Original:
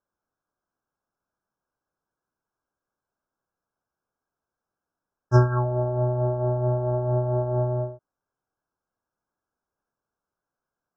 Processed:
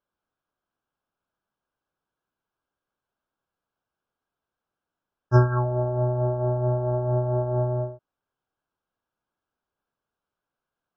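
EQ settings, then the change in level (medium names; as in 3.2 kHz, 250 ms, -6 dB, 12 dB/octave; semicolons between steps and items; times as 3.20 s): distance through air 140 m; peaking EQ 3.1 kHz +10 dB 0.93 oct; 0.0 dB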